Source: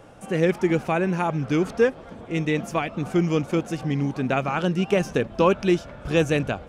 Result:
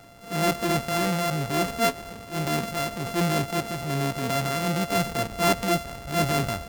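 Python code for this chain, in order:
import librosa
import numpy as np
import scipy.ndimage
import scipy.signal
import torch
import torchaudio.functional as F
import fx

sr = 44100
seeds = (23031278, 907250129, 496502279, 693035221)

y = np.r_[np.sort(x[:len(x) // 64 * 64].reshape(-1, 64), axis=1).ravel(), x[len(x) // 64 * 64:]]
y = fx.transient(y, sr, attack_db=-7, sustain_db=5)
y = y * librosa.db_to_amplitude(-1.5)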